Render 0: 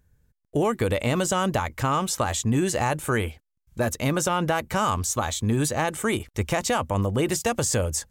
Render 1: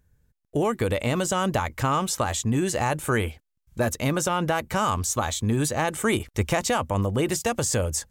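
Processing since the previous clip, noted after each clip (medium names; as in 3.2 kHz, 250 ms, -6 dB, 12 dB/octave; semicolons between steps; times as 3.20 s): gain riding 0.5 s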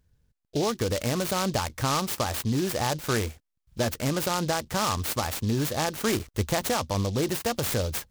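delay time shaken by noise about 4.3 kHz, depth 0.079 ms; trim -2.5 dB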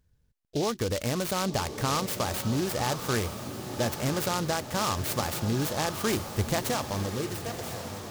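fade out at the end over 1.54 s; echo that smears into a reverb 1085 ms, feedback 53%, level -9 dB; trim -2 dB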